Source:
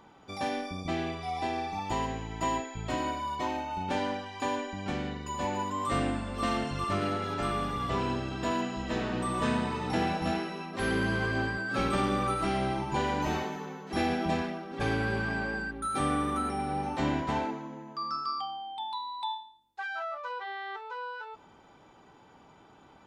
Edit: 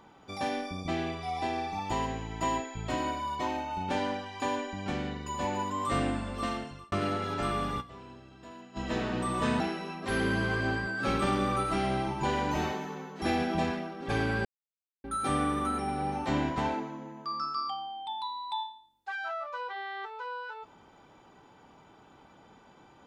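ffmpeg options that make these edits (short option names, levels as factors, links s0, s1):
-filter_complex "[0:a]asplit=7[s0][s1][s2][s3][s4][s5][s6];[s0]atrim=end=6.92,asetpts=PTS-STARTPTS,afade=t=out:st=6.28:d=0.64[s7];[s1]atrim=start=6.92:end=7.92,asetpts=PTS-STARTPTS,afade=t=in:d=0.004:c=hsin,afade=t=out:st=0.88:d=0.12:c=exp:silence=0.133352[s8];[s2]atrim=start=7.92:end=8.65,asetpts=PTS-STARTPTS,volume=0.133[s9];[s3]atrim=start=8.65:end=9.602,asetpts=PTS-STARTPTS,afade=t=in:d=0.12:c=exp:silence=0.133352[s10];[s4]atrim=start=10.308:end=15.16,asetpts=PTS-STARTPTS,afade=t=out:st=4.848:d=0.004:c=hsin[s11];[s5]atrim=start=15.16:end=15.75,asetpts=PTS-STARTPTS,volume=0[s12];[s6]atrim=start=15.75,asetpts=PTS-STARTPTS,afade=t=in:d=0.004:c=hsin[s13];[s7][s8][s9][s10]concat=n=4:v=0:a=1[s14];[s11][s12][s13]concat=n=3:v=0:a=1[s15];[s14][s15]acrossfade=d=0.004:c1=hsin:c2=hsin"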